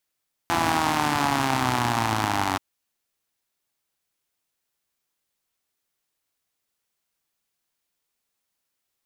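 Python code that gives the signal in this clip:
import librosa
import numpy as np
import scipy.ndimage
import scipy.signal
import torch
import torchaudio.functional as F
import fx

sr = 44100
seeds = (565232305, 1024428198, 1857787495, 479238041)

y = fx.engine_four_rev(sr, seeds[0], length_s=2.08, rpm=5100, resonances_hz=(120.0, 260.0, 820.0), end_rpm=2800)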